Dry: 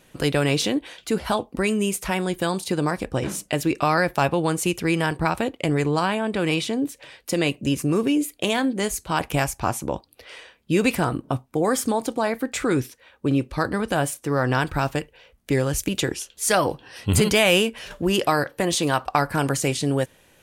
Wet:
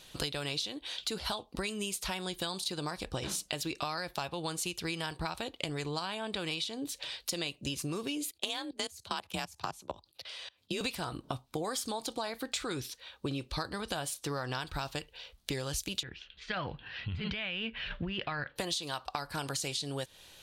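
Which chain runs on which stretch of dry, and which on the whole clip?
8.31–10.81 s: level held to a coarse grid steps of 24 dB + frequency shift +37 Hz
16.03–18.56 s: high-order bell 590 Hz -9.5 dB 2.3 oct + compressor with a negative ratio -26 dBFS + low-pass 2.5 kHz 24 dB/octave
whole clip: graphic EQ 125/250/500/2000/4000 Hz -4/-7/-4/-5/+12 dB; compression 12:1, threshold -32 dBFS

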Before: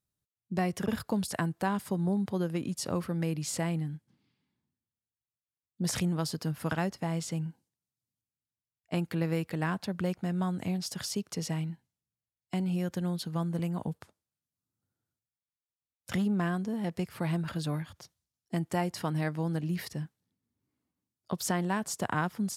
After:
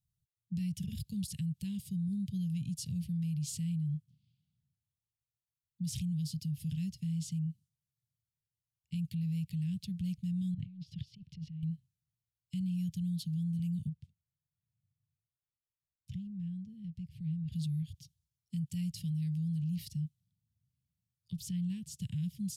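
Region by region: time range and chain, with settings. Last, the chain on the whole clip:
10.54–11.63 s: compressor with a negative ratio -42 dBFS + distance through air 340 m + transient shaper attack +3 dB, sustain -1 dB
13.89–17.52 s: low-pass 1.3 kHz 6 dB/octave + compression 2:1, threshold -42 dBFS
21.38–22.01 s: treble shelf 3.4 kHz -7.5 dB + upward compressor, threshold -45 dBFS
whole clip: elliptic band-stop 150–2900 Hz, stop band 40 dB; resonant low shelf 640 Hz +11 dB, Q 1.5; peak limiter -25.5 dBFS; trim -4.5 dB

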